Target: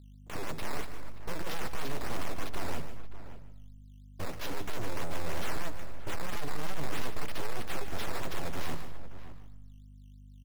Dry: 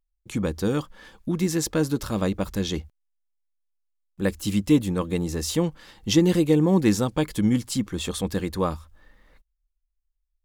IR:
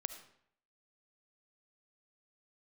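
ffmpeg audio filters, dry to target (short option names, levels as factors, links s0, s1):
-filter_complex "[0:a]agate=range=0.0224:threshold=0.01:ratio=3:detection=peak,highpass=72,equalizer=f=520:t=o:w=0.43:g=8,aeval=exprs='abs(val(0))':c=same,aeval=exprs='val(0)+0.00224*(sin(2*PI*50*n/s)+sin(2*PI*2*50*n/s)/2+sin(2*PI*3*50*n/s)/3+sin(2*PI*4*50*n/s)/4+sin(2*PI*5*50*n/s)/5)':c=same,acrusher=samples=10:mix=1:aa=0.000001:lfo=1:lforange=10:lforate=3.1,acontrast=83,asoftclip=type=tanh:threshold=0.0708,asplit=2[s0][s1];[s1]adelay=577.3,volume=0.224,highshelf=f=4000:g=-13[s2];[s0][s2]amix=inputs=2:normalize=0,asplit=2[s3][s4];[1:a]atrim=start_sample=2205,adelay=148[s5];[s4][s5]afir=irnorm=-1:irlink=0,volume=0.335[s6];[s3][s6]amix=inputs=2:normalize=0,volume=0.631"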